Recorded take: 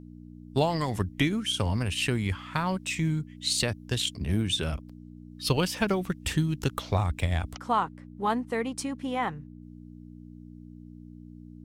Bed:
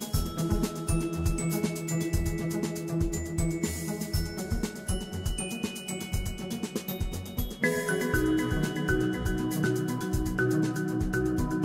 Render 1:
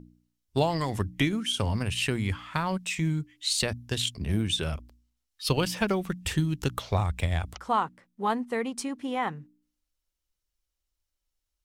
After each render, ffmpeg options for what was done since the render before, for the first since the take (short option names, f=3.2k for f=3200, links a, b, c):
-af "bandreject=f=60:t=h:w=4,bandreject=f=120:t=h:w=4,bandreject=f=180:t=h:w=4,bandreject=f=240:t=h:w=4,bandreject=f=300:t=h:w=4"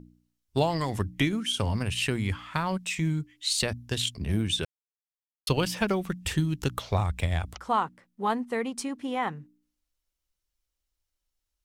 -filter_complex "[0:a]asplit=3[a][b][c];[a]atrim=end=4.65,asetpts=PTS-STARTPTS,afade=t=out:st=4.646:d=0.004:c=hsin[d];[b]atrim=start=4.65:end=5.47,asetpts=PTS-STARTPTS,volume=0[e];[c]atrim=start=5.47,asetpts=PTS-STARTPTS,afade=t=in:d=0.004:c=hsin[f];[d][e][f]concat=n=3:v=0:a=1"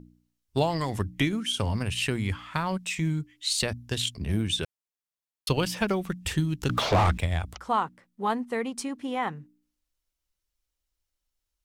-filter_complex "[0:a]asettb=1/sr,asplit=3[a][b][c];[a]atrim=end=6.694[d];[b]atrim=start=6.69:end=7.18,asetpts=PTS-STARTPTS,afade=t=in:d=0.004:c=qsin,afade=t=out:st=0.486:d=0.004:c=qsin,asplit=2[e][f];[f]highpass=f=720:p=1,volume=35dB,asoftclip=type=tanh:threshold=-12.5dB[g];[e][g]amix=inputs=2:normalize=0,lowpass=f=1.4k:p=1,volume=-6dB[h];[c]atrim=start=7.176[i];[d][h]acrossfade=d=0.004:c1=hsin:c2=qsin[j];[j][i]acrossfade=d=0.004:c1=qsin:c2=hsin"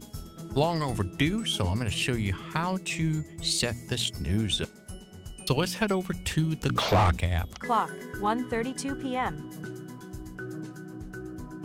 -filter_complex "[1:a]volume=-11.5dB[a];[0:a][a]amix=inputs=2:normalize=0"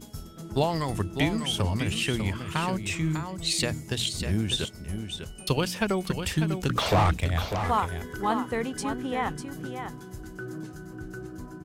-af "aecho=1:1:598:0.398"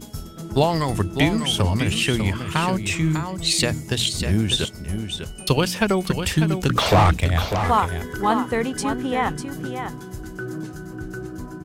-af "volume=6.5dB"